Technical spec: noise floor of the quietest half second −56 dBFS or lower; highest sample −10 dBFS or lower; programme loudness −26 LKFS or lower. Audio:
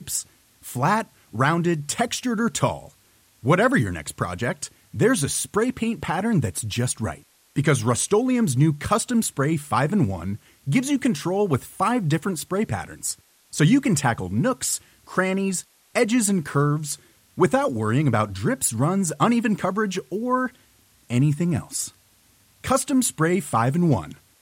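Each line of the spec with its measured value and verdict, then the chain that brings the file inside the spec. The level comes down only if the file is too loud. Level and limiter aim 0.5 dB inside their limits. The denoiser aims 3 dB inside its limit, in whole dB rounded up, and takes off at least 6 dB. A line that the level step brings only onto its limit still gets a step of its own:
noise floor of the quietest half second −59 dBFS: in spec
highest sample −6.5 dBFS: out of spec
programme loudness −23.0 LKFS: out of spec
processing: level −3.5 dB
brickwall limiter −10.5 dBFS

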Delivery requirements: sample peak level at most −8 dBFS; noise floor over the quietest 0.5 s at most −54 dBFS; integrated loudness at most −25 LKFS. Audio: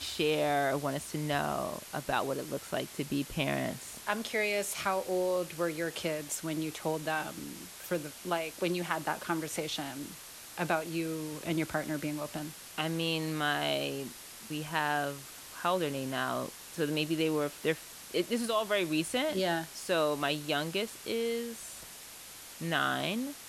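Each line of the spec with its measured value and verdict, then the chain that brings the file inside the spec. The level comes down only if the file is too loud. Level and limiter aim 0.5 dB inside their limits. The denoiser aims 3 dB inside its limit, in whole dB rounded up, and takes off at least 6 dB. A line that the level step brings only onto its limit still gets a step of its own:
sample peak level −15.0 dBFS: in spec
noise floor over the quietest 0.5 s −48 dBFS: out of spec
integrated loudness −33.0 LKFS: in spec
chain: broadband denoise 9 dB, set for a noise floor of −48 dBFS

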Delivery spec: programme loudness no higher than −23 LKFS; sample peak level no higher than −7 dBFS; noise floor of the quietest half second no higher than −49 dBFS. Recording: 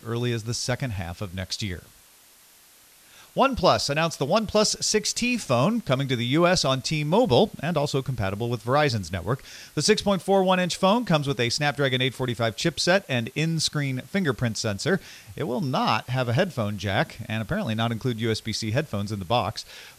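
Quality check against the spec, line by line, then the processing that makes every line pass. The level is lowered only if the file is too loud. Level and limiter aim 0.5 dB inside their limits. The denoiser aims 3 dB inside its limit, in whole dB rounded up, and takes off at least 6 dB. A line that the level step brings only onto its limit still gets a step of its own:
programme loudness −24.5 LKFS: in spec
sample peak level −5.5 dBFS: out of spec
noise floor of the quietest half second −54 dBFS: in spec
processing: brickwall limiter −7.5 dBFS

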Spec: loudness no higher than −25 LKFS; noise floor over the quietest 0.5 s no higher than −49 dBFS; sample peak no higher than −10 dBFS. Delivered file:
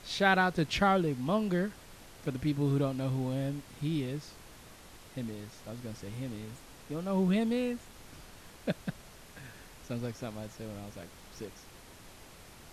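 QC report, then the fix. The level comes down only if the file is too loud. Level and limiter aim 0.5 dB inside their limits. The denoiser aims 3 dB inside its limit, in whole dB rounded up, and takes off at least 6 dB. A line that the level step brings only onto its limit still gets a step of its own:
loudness −33.0 LKFS: in spec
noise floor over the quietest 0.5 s −52 dBFS: in spec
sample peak −12.0 dBFS: in spec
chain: no processing needed

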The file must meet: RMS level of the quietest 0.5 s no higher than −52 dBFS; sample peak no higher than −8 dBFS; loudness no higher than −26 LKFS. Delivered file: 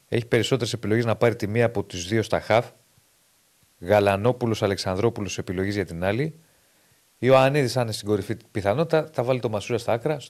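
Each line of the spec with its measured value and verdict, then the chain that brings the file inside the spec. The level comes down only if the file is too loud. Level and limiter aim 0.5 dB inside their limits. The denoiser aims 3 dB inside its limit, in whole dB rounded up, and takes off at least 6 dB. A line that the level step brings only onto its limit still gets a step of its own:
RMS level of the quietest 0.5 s −62 dBFS: in spec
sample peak −6.0 dBFS: out of spec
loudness −23.5 LKFS: out of spec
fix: level −3 dB

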